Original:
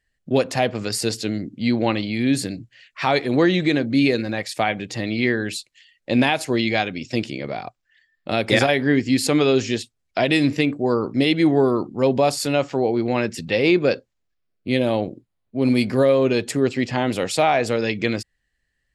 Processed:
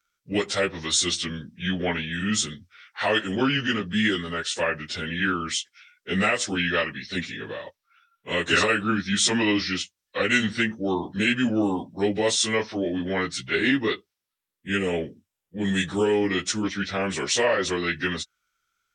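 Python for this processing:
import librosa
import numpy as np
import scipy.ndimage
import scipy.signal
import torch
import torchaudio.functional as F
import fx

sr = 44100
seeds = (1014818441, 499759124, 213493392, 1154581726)

y = fx.pitch_bins(x, sr, semitones=-4.5)
y = fx.tilt_eq(y, sr, slope=3.0)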